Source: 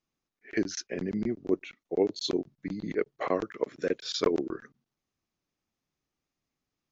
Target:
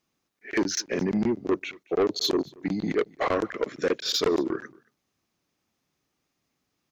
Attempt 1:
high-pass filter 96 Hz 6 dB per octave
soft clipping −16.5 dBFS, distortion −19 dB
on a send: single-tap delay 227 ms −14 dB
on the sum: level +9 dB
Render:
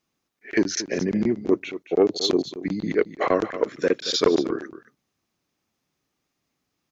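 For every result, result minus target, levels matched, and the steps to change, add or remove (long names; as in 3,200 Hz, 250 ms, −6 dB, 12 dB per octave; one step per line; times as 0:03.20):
soft clipping: distortion −11 dB; echo-to-direct +11 dB
change: soft clipping −27 dBFS, distortion −8 dB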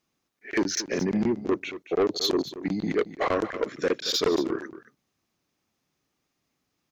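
echo-to-direct +11 dB
change: single-tap delay 227 ms −25 dB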